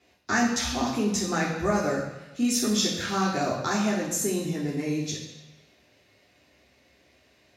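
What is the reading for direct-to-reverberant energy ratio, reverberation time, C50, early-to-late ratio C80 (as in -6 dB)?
-5.5 dB, 1.0 s, 3.5 dB, 6.0 dB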